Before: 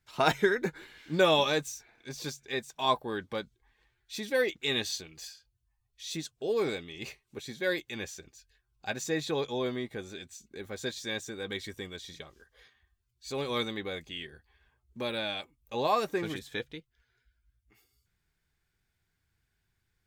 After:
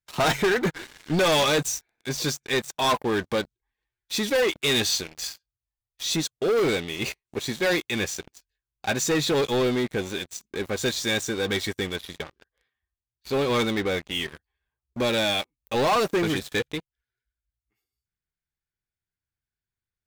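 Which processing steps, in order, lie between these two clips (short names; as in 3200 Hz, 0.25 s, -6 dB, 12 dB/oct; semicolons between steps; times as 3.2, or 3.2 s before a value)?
11.96–14.15 LPF 3300 Hz 12 dB/oct; sample leveller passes 5; gain -5.5 dB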